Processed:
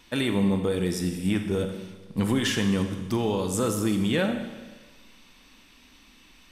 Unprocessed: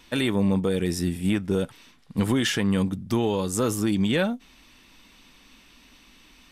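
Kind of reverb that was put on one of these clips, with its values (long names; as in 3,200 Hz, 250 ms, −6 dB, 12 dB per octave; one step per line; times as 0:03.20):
four-comb reverb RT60 1.3 s, combs from 29 ms, DRR 6 dB
level −2 dB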